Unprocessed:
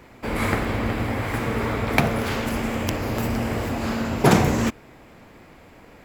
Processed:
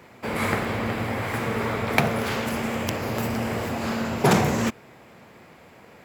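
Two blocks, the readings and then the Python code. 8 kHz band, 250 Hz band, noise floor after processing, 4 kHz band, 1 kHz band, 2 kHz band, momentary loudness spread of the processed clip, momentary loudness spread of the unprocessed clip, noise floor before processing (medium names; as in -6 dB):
-0.5 dB, -2.5 dB, -50 dBFS, -0.5 dB, -0.5 dB, -0.5 dB, 7 LU, 8 LU, -49 dBFS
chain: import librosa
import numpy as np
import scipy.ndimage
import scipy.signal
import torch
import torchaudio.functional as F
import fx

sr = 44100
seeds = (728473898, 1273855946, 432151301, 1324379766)

y = scipy.signal.sosfilt(scipy.signal.butter(2, 110.0, 'highpass', fs=sr, output='sos'), x)
y = fx.peak_eq(y, sr, hz=290.0, db=-6.5, octaves=0.32)
y = fx.transformer_sat(y, sr, knee_hz=520.0)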